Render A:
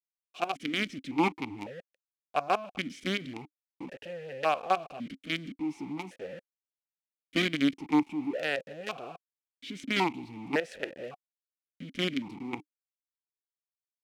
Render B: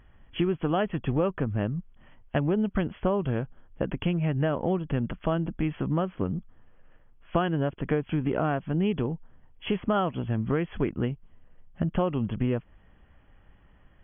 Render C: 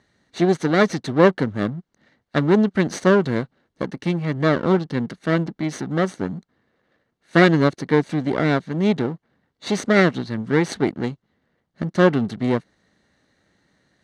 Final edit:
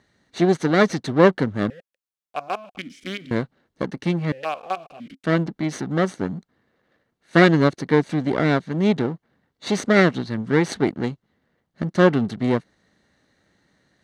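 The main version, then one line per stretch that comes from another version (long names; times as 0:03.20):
C
0:01.70–0:03.31: punch in from A
0:04.32–0:05.24: punch in from A
not used: B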